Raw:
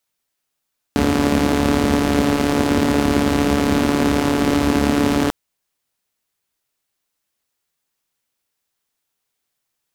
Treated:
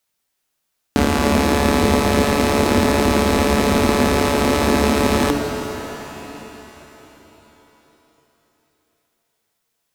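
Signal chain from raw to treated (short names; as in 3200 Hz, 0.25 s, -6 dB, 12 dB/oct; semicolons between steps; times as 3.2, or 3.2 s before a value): de-hum 143.1 Hz, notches 2; shimmer reverb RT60 3.8 s, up +7 st, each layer -8 dB, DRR 5 dB; gain +2 dB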